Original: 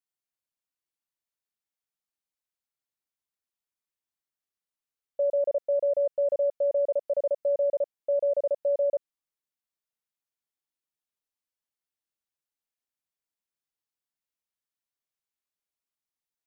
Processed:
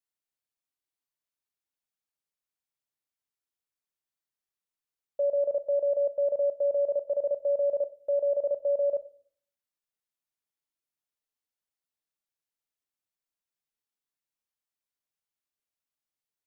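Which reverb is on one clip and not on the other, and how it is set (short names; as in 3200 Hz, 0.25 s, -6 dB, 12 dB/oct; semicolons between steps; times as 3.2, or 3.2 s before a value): shoebox room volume 540 m³, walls furnished, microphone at 0.41 m; gain -2 dB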